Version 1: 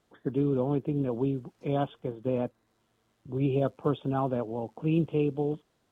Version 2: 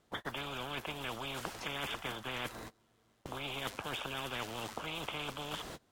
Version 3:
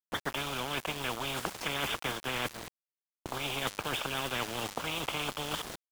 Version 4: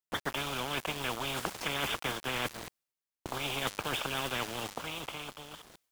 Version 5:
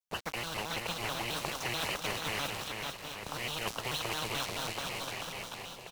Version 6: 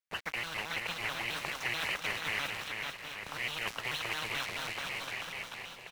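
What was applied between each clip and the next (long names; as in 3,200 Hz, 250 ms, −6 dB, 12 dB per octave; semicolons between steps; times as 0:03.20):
noise gate −57 dBFS, range −27 dB; reversed playback; downward compressor 6 to 1, threshold −33 dBFS, peak gain reduction 12 dB; reversed playback; every bin compressed towards the loudest bin 10 to 1; level +3.5 dB
centre clipping without the shift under −42.5 dBFS; level +6 dB
fade-out on the ending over 1.64 s; reversed playback; upward compression, threshold −48 dBFS; reversed playback
thirty-one-band graphic EQ 315 Hz −11 dB, 1,600 Hz −6 dB, 5,000 Hz +5 dB; bouncing-ball delay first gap 440 ms, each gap 0.75×, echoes 5; pitch modulation by a square or saw wave square 4.6 Hz, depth 250 cents; level −2 dB
parametric band 2,000 Hz +11.5 dB 1.2 octaves; level −6 dB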